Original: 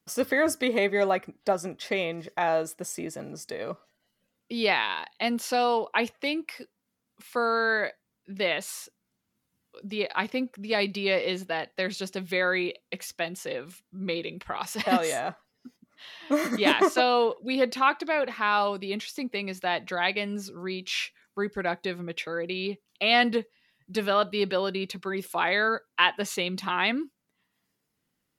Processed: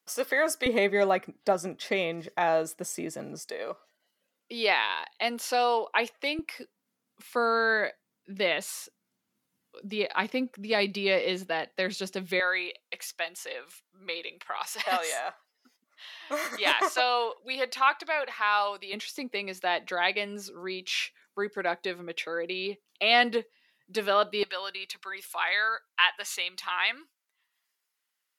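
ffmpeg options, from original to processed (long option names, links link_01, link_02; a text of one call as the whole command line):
ffmpeg -i in.wav -af "asetnsamples=nb_out_samples=441:pad=0,asendcmd='0.66 highpass f 130;3.39 highpass f 390;6.39 highpass f 170;12.4 highpass f 720;18.93 highpass f 320;24.43 highpass f 1100',highpass=500" out.wav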